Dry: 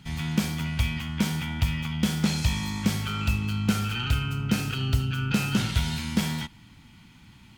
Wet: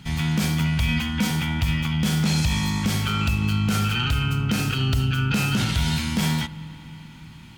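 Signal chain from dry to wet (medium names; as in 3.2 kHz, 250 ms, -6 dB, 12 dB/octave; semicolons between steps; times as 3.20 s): 0.88–1.31 s: comb 4 ms, depth 74%; peak limiter -19 dBFS, peak gain reduction 10 dB; on a send: reverberation RT60 4.9 s, pre-delay 32 ms, DRR 17 dB; on the sum: trim +6 dB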